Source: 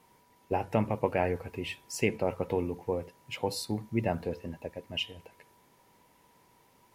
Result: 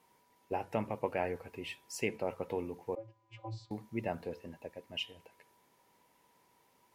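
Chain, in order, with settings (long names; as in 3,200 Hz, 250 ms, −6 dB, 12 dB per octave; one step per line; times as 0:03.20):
0:02.95–0:03.71: channel vocoder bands 32, square 111 Hz
low-shelf EQ 170 Hz −8.5 dB
level −5 dB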